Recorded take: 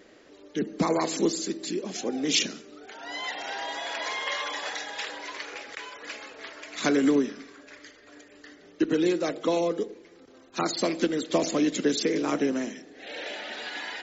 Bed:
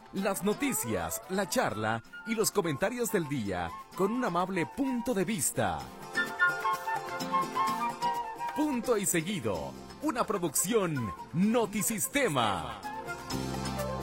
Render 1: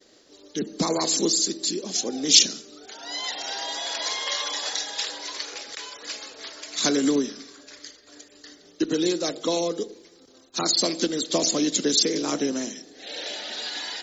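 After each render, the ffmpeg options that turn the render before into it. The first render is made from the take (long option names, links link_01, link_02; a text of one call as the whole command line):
ffmpeg -i in.wav -af "agate=range=-33dB:threshold=-50dB:ratio=3:detection=peak,highshelf=frequency=3200:width_type=q:width=1.5:gain=9.5" out.wav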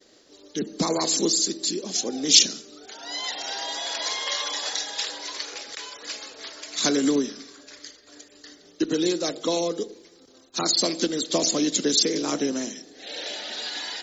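ffmpeg -i in.wav -af anull out.wav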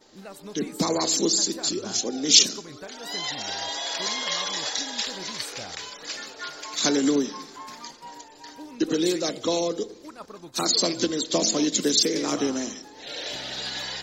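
ffmpeg -i in.wav -i bed.wav -filter_complex "[1:a]volume=-12dB[link_01];[0:a][link_01]amix=inputs=2:normalize=0" out.wav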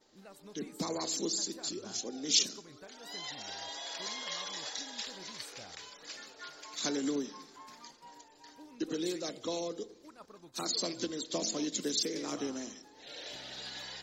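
ffmpeg -i in.wav -af "volume=-11.5dB" out.wav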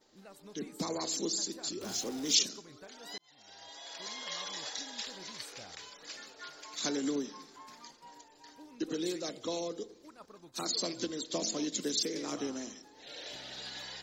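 ffmpeg -i in.wav -filter_complex "[0:a]asettb=1/sr,asplit=3[link_01][link_02][link_03];[link_01]atrim=end=1.814[link_04];[link_02]atrim=start=1.81:end=2.35,asetpts=PTS-STARTPTS,afade=type=in:duration=0.004:curve=qsin,afade=type=out:start_time=0.536:duration=0.004:curve=qsin,aeval=exprs='val(0)+0.5*0.00944*sgn(val(0))':channel_layout=same[link_05];[link_03]atrim=start=2.346[link_06];[link_04][link_05]acrossfade=duration=0.004:curve1=hsin:curve2=qsin[link_07];[link_07][link_06]acrossfade=duration=0.004:curve1=qsin:curve2=hsin,asplit=2[link_08][link_09];[link_08]atrim=end=3.18,asetpts=PTS-STARTPTS,afade=type=out:start_time=3.176:duration=0.004:curve=hsin[link_10];[link_09]atrim=start=3.18,asetpts=PTS-STARTPTS,afade=type=in:duration=1.26[link_11];[link_10][link_11]concat=n=2:v=0:a=1" out.wav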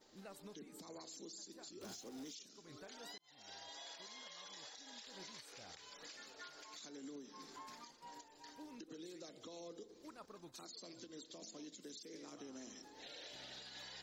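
ffmpeg -i in.wav -af "acompressor=threshold=-44dB:ratio=4,alimiter=level_in=19dB:limit=-24dB:level=0:latency=1:release=331,volume=-19dB" out.wav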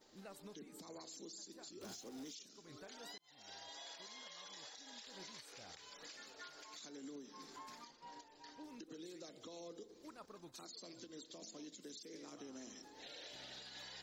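ffmpeg -i in.wav -filter_complex "[0:a]asettb=1/sr,asplit=3[link_01][link_02][link_03];[link_01]atrim=end=7.844[link_04];[link_02]atrim=start=7.84:end=8.64,asetpts=PTS-STARTPTS,afade=type=in:duration=0.004:curve=qsin,afade=type=out:start_time=0.796:duration=0.004:curve=qsin,lowpass=frequency=6200:width=0.5412,lowpass=frequency=6200:width=1.3066[link_05];[link_03]atrim=start=8.636[link_06];[link_04][link_05]acrossfade=duration=0.004:curve1=hsin:curve2=qsin[link_07];[link_07][link_06]acrossfade=duration=0.004:curve1=qsin:curve2=hsin" out.wav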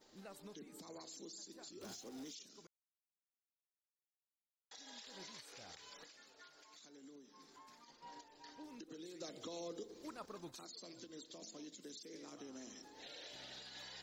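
ffmpeg -i in.wav -filter_complex "[0:a]asettb=1/sr,asplit=3[link_01][link_02][link_03];[link_01]atrim=end=9.204[link_04];[link_02]atrim=start=9.2:end=10.55,asetpts=PTS-STARTPTS,afade=type=in:duration=0.004:curve=qsin,afade=type=out:start_time=1.346:duration=0.004:curve=qsin,acontrast=30[link_05];[link_03]atrim=start=10.546[link_06];[link_04][link_05]acrossfade=duration=0.004:curve1=hsin:curve2=qsin[link_07];[link_07][link_06]acrossfade=duration=0.004:curve1=qsin:curve2=hsin,asplit=5[link_08][link_09][link_10][link_11][link_12];[link_08]atrim=end=2.67,asetpts=PTS-STARTPTS,afade=type=out:start_time=2.666:duration=0.004:curve=hsin[link_13];[link_09]atrim=start=2.67:end=4.71,asetpts=PTS-STARTPTS,volume=0[link_14];[link_10]atrim=start=4.71:end=6.042,asetpts=PTS-STARTPTS,afade=type=in:duration=0.004:curve=hsin[link_15];[link_11]atrim=start=6.038:end=7.882,asetpts=PTS-STARTPTS,volume=-7.5dB[link_16];[link_12]atrim=start=7.878[link_17];[link_13][link_14][link_15]concat=n=3:v=0:a=1[link_18];[link_18][link_16]acrossfade=duration=0.004:curve1=hsin:curve2=hsin[link_19];[link_19][link_17]acrossfade=duration=0.004:curve1=hsin:curve2=hsin" out.wav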